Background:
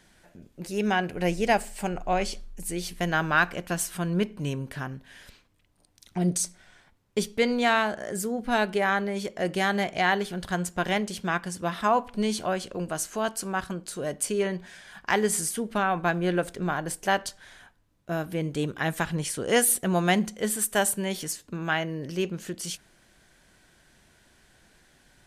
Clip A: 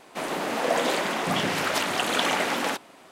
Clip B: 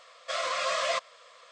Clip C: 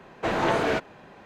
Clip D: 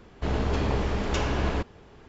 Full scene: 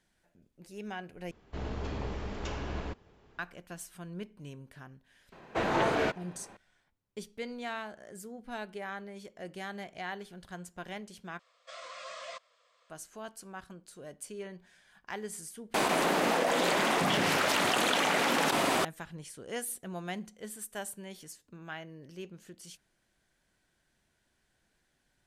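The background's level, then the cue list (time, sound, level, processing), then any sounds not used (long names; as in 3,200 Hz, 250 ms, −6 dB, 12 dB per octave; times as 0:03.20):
background −15.5 dB
0:01.31: overwrite with D −10.5 dB
0:05.32: mix in C −4 dB
0:11.39: overwrite with B −15 dB
0:15.74: mix in A −7 dB + envelope flattener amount 100%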